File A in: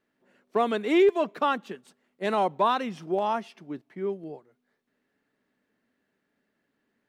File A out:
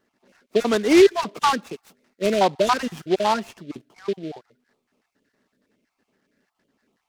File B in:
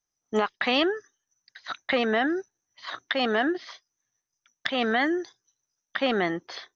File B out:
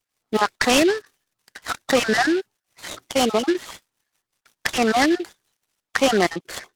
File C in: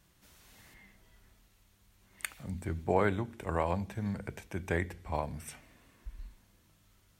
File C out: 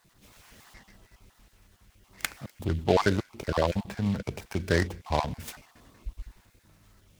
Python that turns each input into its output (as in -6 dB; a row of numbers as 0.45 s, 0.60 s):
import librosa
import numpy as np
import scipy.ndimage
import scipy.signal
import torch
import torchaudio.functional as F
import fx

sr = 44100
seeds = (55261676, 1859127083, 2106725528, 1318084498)

y = fx.spec_dropout(x, sr, seeds[0], share_pct=32)
y = fx.noise_mod_delay(y, sr, seeds[1], noise_hz=2800.0, depth_ms=0.045)
y = y * 10.0 ** (7.5 / 20.0)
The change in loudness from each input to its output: +5.5 LU, +5.5 LU, +5.5 LU